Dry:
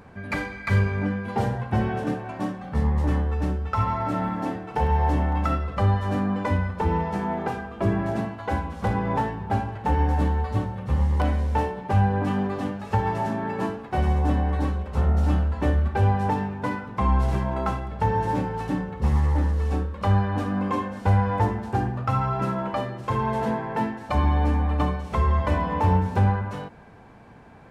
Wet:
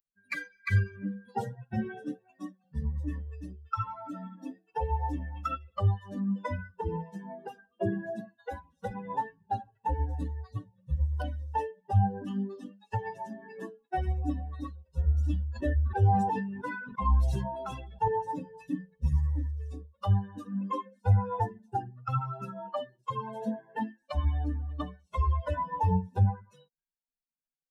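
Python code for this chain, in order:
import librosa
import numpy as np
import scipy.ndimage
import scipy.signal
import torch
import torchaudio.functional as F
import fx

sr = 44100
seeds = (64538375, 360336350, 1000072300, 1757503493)

y = fx.bin_expand(x, sr, power=3.0)
y = fx.sustainer(y, sr, db_per_s=42.0, at=(15.25, 18.08))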